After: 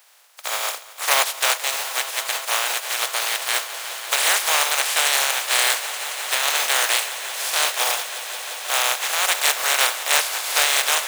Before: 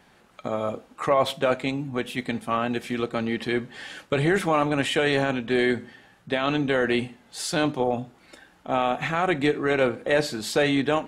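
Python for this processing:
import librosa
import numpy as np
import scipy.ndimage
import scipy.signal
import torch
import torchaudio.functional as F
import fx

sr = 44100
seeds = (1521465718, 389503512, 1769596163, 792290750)

y = fx.spec_flatten(x, sr, power=0.21)
y = scipy.signal.sosfilt(scipy.signal.butter(4, 590.0, 'highpass', fs=sr, output='sos'), y)
y = fx.echo_swell(y, sr, ms=175, loudest=5, wet_db=-17)
y = y * librosa.db_to_amplitude(3.5)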